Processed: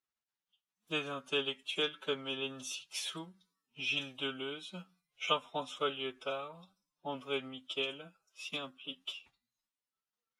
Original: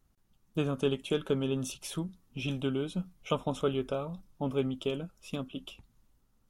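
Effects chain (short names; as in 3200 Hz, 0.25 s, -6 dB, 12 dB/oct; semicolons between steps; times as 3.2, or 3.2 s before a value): spectral noise reduction 14 dB; transient shaper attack +2 dB, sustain -4 dB; time stretch by phase-locked vocoder 1.6×; band-pass 2900 Hz, Q 0.75; gain +5.5 dB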